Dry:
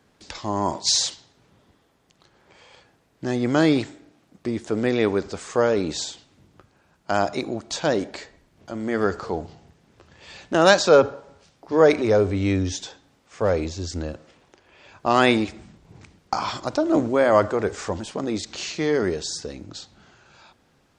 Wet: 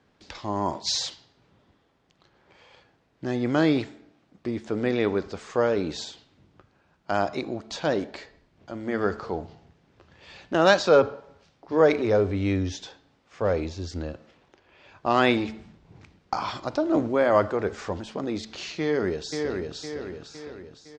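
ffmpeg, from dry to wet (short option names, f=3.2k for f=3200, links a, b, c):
-filter_complex "[0:a]asplit=2[a][b];[b]afade=t=in:st=18.81:d=0.01,afade=t=out:st=19.75:d=0.01,aecho=0:1:510|1020|1530|2040|2550|3060:0.630957|0.315479|0.157739|0.0788697|0.0394348|0.0197174[c];[a][c]amix=inputs=2:normalize=0,lowpass=4.8k,bandreject=f=219.3:t=h:w=4,bandreject=f=438.6:t=h:w=4,bandreject=f=657.9:t=h:w=4,bandreject=f=877.2:t=h:w=4,bandreject=f=1.0965k:t=h:w=4,bandreject=f=1.3158k:t=h:w=4,bandreject=f=1.5351k:t=h:w=4,bandreject=f=1.7544k:t=h:w=4,bandreject=f=1.9737k:t=h:w=4,bandreject=f=2.193k:t=h:w=4,bandreject=f=2.4123k:t=h:w=4,bandreject=f=2.6316k:t=h:w=4,bandreject=f=2.8509k:t=h:w=4,bandreject=f=3.0702k:t=h:w=4,bandreject=f=3.2895k:t=h:w=4,bandreject=f=3.5088k:t=h:w=4,bandreject=f=3.7281k:t=h:w=4,bandreject=f=3.9474k:t=h:w=4,bandreject=f=4.1667k:t=h:w=4,bandreject=f=4.386k:t=h:w=4,bandreject=f=4.6053k:t=h:w=4,bandreject=f=4.8246k:t=h:w=4,bandreject=f=5.0439k:t=h:w=4,volume=-3dB"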